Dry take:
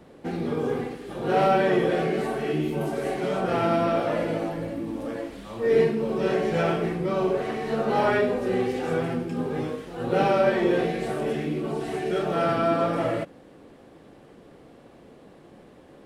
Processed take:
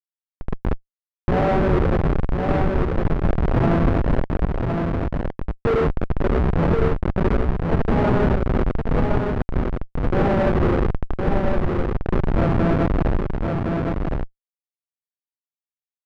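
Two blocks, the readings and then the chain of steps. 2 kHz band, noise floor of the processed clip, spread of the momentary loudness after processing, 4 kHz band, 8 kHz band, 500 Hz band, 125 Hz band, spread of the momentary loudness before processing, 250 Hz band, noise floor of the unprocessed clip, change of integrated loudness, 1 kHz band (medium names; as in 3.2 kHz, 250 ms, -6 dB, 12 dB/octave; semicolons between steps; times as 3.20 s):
+0.5 dB, under -85 dBFS, 8 LU, -3.0 dB, no reading, 0.0 dB, +11.5 dB, 11 LU, +5.0 dB, -51 dBFS, +3.5 dB, +0.5 dB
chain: Schmitt trigger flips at -19.5 dBFS; level rider gain up to 7 dB; low-pass 1.6 kHz 12 dB/octave; on a send: delay 1063 ms -4 dB; on the sum: trim +1.5 dB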